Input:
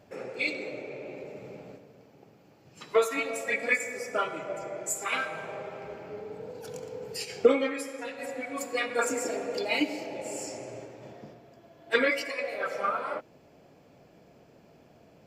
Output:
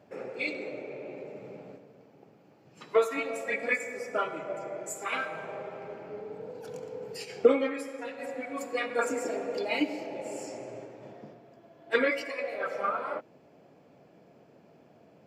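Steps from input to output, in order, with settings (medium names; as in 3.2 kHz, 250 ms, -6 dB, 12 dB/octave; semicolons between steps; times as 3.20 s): high-pass 130 Hz 12 dB/octave; treble shelf 3 kHz -8.5 dB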